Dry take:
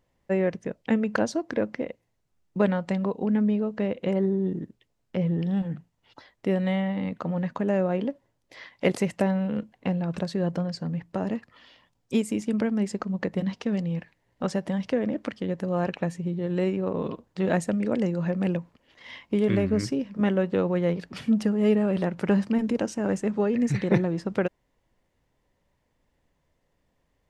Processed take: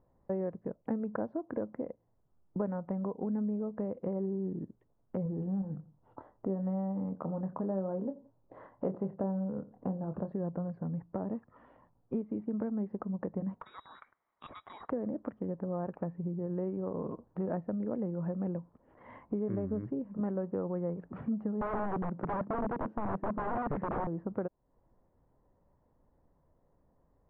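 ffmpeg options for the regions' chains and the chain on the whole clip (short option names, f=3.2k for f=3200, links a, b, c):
-filter_complex "[0:a]asettb=1/sr,asplit=3[a][b][c];[a]atrim=end=5.234[d];[b]atrim=start=5.23:end=10.32,asetpts=PTS-STARTPTS,afade=t=in:d=0.004:c=qsin,afade=t=out:st=5.086:d=0.004:c=qsin,equalizer=f=2.2k:t=o:w=0.61:g=-11,asplit=2[e][f];[f]adelay=26,volume=-8dB[g];[e][g]amix=inputs=2:normalize=0,atrim=end_sample=224469,asplit=2[h][i];[i]adelay=86,lowpass=f=1.1k:p=1,volume=-20dB,asplit=2[j][k];[k]adelay=86,lowpass=f=1.1k:p=1,volume=0.3[l];[h][j][l]amix=inputs=3:normalize=0,atrim=end_sample=224469[m];[c]atrim=start=10.316[n];[d][m]acrossfade=d=0.004:c1=hsin:c2=qsin[o];[o][n]acrossfade=d=0.004:c1=qsin:c2=hsin,asettb=1/sr,asplit=3[p][q][r];[p]atrim=end=13.604[s];[q]atrim=start=13.6:end=14.9,asetpts=PTS-STARTPTS,afade=t=in:d=0.004:c=qsin,afade=t=out:st=1.296:d=0.004:c=qsin,highshelf=f=2.3k:g=7.5,lowpass=f=3.4k:t=q:w=0.5098,lowpass=f=3.4k:t=q:w=0.6013,lowpass=f=3.4k:t=q:w=0.9,lowpass=f=3.4k:t=q:w=2.563,afreqshift=-4000[t];[r]atrim=start=14.896[u];[s][t]acrossfade=d=0.004:c1=hsin:c2=qsin[v];[v][u]acrossfade=d=0.004:c1=qsin:c2=hsin,asettb=1/sr,asplit=3[w][x][y];[w]atrim=end=21.614[z];[x]atrim=start=21.61:end=24.07,asetpts=PTS-STARTPTS,afade=t=in:d=0.004:c=qsin,afade=t=out:st=2.456:d=0.004:c=qsin,highpass=210,lowshelf=f=320:g=12,aeval=exprs='(mod(7.5*val(0)+1,2)-1)/7.5':c=same[aa];[y]atrim=start=24.066[ab];[z][aa]acrossfade=d=0.004:c1=hsin:c2=qsin[ac];[ac][ab]acrossfade=d=0.004:c1=qsin:c2=hsin,lowpass=f=1.2k:w=0.5412,lowpass=f=1.2k:w=1.3066,acompressor=threshold=-40dB:ratio=2.5,volume=2.5dB"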